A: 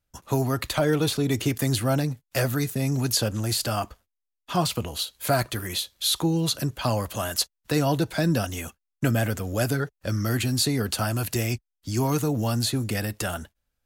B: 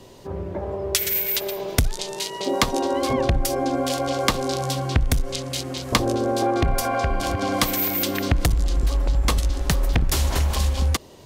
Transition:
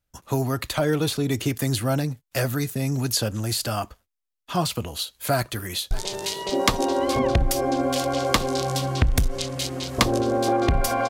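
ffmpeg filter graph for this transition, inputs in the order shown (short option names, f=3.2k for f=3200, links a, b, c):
-filter_complex "[0:a]apad=whole_dur=11.09,atrim=end=11.09,atrim=end=5.912[a];[1:a]atrim=start=1.848:end=7.03[b];[a][b]acrossfade=d=0.004:c1=hsin:c2=hsin,asplit=2[c][d];[d]afade=t=in:st=5.35:d=0.01,afade=t=out:st=5.91:d=0.01,aecho=0:1:580|1160|1740:0.188365|0.0565095|0.0169528[e];[c][e]amix=inputs=2:normalize=0"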